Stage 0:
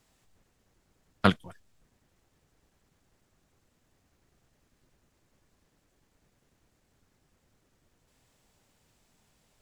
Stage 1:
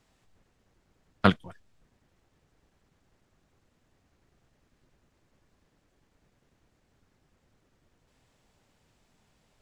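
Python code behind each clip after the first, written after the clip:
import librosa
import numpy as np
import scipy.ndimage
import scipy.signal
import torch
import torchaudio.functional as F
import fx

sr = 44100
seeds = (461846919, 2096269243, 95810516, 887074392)

y = fx.high_shelf(x, sr, hz=7500.0, db=-11.5)
y = y * librosa.db_to_amplitude(1.5)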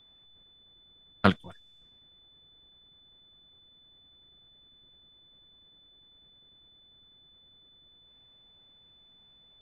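y = fx.env_lowpass(x, sr, base_hz=1900.0, full_db=-41.0)
y = y + 10.0 ** (-56.0 / 20.0) * np.sin(2.0 * np.pi * 3500.0 * np.arange(len(y)) / sr)
y = y * librosa.db_to_amplitude(-1.0)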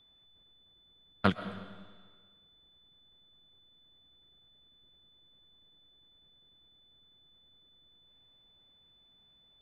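y = fx.rev_freeverb(x, sr, rt60_s=1.5, hf_ratio=0.95, predelay_ms=85, drr_db=11.5)
y = y * librosa.db_to_amplitude(-5.0)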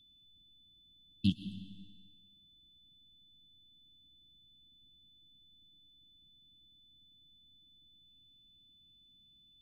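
y = fx.brickwall_bandstop(x, sr, low_hz=340.0, high_hz=2600.0)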